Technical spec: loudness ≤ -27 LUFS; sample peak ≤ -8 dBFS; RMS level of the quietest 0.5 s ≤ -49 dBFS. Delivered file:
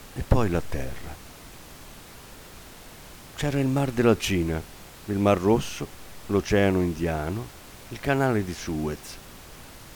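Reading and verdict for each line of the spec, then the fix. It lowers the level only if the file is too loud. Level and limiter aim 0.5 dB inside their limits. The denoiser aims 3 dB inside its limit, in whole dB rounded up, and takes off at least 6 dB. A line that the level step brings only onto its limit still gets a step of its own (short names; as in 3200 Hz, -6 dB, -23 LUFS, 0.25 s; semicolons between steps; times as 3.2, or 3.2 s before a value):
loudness -25.5 LUFS: fail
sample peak -5.5 dBFS: fail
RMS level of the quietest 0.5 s -45 dBFS: fail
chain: denoiser 6 dB, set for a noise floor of -45 dBFS; gain -2 dB; limiter -8.5 dBFS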